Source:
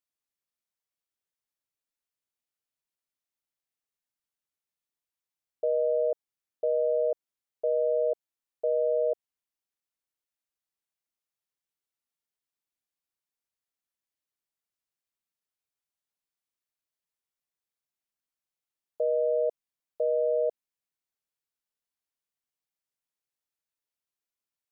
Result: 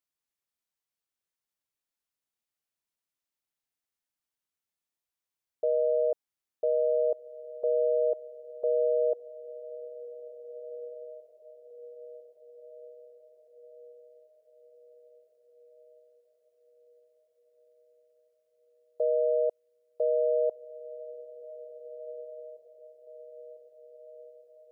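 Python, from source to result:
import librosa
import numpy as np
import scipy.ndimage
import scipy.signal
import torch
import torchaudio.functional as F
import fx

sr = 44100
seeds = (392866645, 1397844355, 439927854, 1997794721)

y = fx.echo_diffused(x, sr, ms=1767, feedback_pct=50, wet_db=-15)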